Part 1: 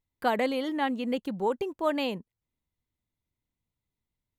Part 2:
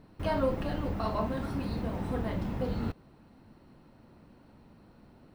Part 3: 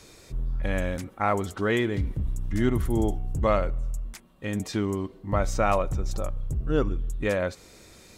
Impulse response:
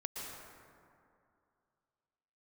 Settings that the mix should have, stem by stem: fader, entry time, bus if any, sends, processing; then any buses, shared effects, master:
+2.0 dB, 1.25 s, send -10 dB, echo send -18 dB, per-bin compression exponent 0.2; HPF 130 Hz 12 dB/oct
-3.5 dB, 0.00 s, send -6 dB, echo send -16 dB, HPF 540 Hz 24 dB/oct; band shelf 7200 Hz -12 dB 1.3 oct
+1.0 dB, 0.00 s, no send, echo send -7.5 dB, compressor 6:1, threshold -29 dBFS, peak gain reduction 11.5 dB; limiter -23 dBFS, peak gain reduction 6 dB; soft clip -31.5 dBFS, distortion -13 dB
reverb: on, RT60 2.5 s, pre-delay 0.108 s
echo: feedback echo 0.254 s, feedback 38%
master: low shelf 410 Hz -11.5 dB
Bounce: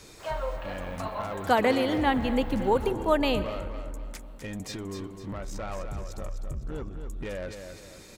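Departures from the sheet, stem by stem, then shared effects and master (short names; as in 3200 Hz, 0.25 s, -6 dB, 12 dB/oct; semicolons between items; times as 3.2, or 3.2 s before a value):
stem 1: missing per-bin compression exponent 0.2; master: missing low shelf 410 Hz -11.5 dB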